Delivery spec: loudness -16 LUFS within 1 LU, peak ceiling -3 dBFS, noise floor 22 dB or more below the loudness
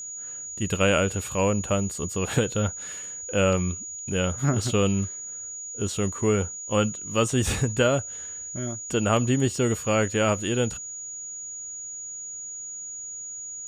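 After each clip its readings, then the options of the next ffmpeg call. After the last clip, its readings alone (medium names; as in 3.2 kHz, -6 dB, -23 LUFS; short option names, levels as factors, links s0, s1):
steady tone 6.8 kHz; tone level -34 dBFS; loudness -26.5 LUFS; peak level -8.0 dBFS; loudness target -16.0 LUFS
-> -af "bandreject=f=6800:w=30"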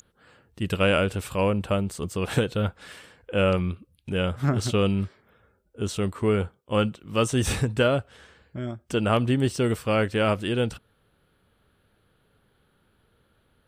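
steady tone not found; loudness -25.5 LUFS; peak level -8.0 dBFS; loudness target -16.0 LUFS
-> -af "volume=2.99,alimiter=limit=0.708:level=0:latency=1"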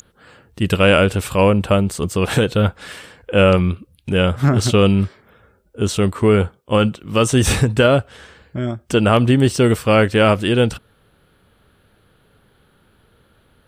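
loudness -16.5 LUFS; peak level -3.0 dBFS; noise floor -58 dBFS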